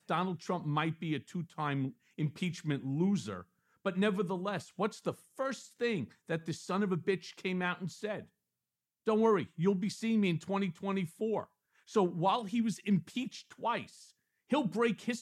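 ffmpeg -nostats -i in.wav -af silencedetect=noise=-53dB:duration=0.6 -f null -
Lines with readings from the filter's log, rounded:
silence_start: 8.26
silence_end: 9.06 | silence_duration: 0.80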